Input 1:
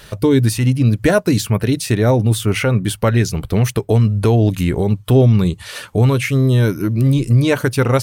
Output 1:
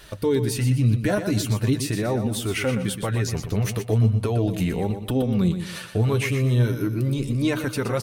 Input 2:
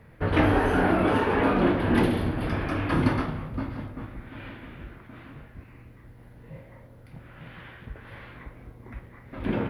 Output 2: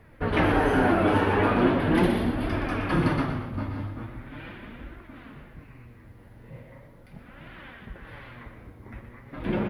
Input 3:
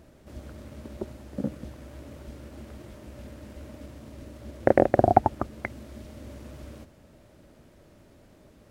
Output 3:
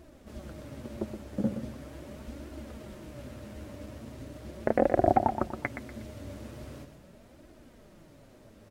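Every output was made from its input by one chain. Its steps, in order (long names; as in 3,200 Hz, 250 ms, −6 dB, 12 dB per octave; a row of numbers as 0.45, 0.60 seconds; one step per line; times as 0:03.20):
brickwall limiter −9 dBFS
flanger 0.4 Hz, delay 2.7 ms, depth 7.9 ms, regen +35%
on a send: repeating echo 121 ms, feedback 34%, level −9 dB
on the sum: normalise the peak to −9 dBFS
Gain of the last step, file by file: −2.0, +4.0, +4.0 decibels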